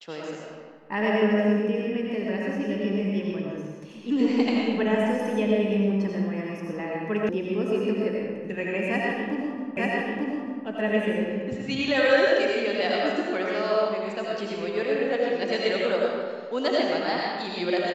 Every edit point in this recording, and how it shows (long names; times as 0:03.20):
0:07.29: cut off before it has died away
0:09.77: the same again, the last 0.89 s